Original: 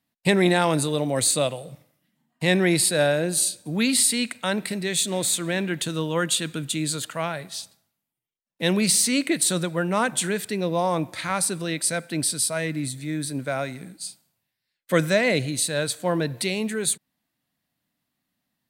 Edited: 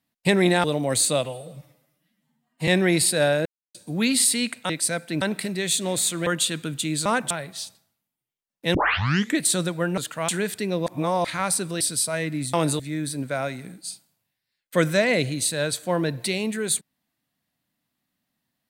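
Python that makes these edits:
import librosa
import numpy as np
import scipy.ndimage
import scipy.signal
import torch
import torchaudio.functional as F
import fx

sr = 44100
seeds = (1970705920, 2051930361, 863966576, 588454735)

y = fx.edit(x, sr, fx.move(start_s=0.64, length_s=0.26, to_s=12.96),
    fx.stretch_span(start_s=1.51, length_s=0.95, factor=1.5),
    fx.silence(start_s=3.24, length_s=0.29),
    fx.cut(start_s=5.53, length_s=0.64),
    fx.swap(start_s=6.96, length_s=0.31, other_s=9.94, other_length_s=0.25),
    fx.tape_start(start_s=8.71, length_s=0.64),
    fx.reverse_span(start_s=10.77, length_s=0.38),
    fx.move(start_s=11.71, length_s=0.52, to_s=4.48), tone=tone)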